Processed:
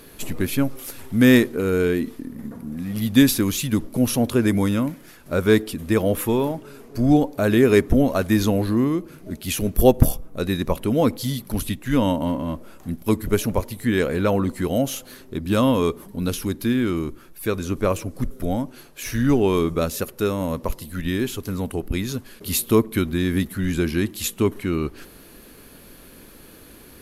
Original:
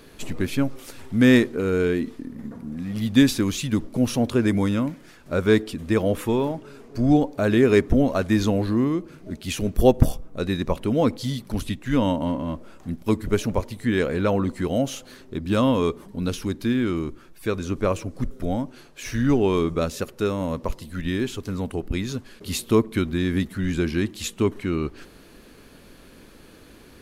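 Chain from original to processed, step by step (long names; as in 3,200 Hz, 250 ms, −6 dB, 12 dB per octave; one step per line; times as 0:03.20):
parametric band 12,000 Hz +14 dB 0.54 octaves
level +1.5 dB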